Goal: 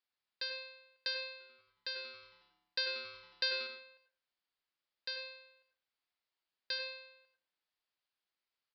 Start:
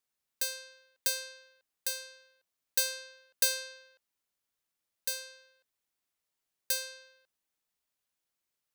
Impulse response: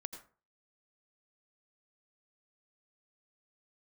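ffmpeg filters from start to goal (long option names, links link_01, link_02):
-filter_complex "[0:a]lowshelf=frequency=480:gain=-9.5,asettb=1/sr,asplit=3[link_01][link_02][link_03];[link_01]atrim=end=1.314[link_04];[link_02]atrim=start=1.31:end=3.67,asetpts=PTS-STARTPTS,afade=type=in:duration=0.004:curve=qsin,afade=type=out:start_time=2.356:duration=0.004:curve=qsin,asplit=7[link_05][link_06][link_07][link_08][link_09][link_10][link_11];[link_06]adelay=91,afreqshift=-140,volume=-15.5dB[link_12];[link_07]adelay=182,afreqshift=-280,volume=-20.1dB[link_13];[link_08]adelay=273,afreqshift=-420,volume=-24.7dB[link_14];[link_09]adelay=364,afreqshift=-560,volume=-29.2dB[link_15];[link_10]adelay=455,afreqshift=-700,volume=-33.8dB[link_16];[link_11]adelay=546,afreqshift=-840,volume=-38.4dB[link_17];[link_05][link_12][link_13][link_14][link_15][link_16][link_17]amix=inputs=7:normalize=0,atrim=end_sample=104076[link_18];[link_03]atrim=start=3.666[link_19];[link_04][link_18]acrossfade=duration=0.004:curve1=hsin:curve2=qsin[link_20];[link_20][link_19]acrossfade=duration=0.004:curve1=qsin:curve2=hsin[link_21];[1:a]atrim=start_sample=2205[link_22];[link_21][link_22]afir=irnorm=-1:irlink=0,aresample=11025,aresample=44100,volume=2.5dB"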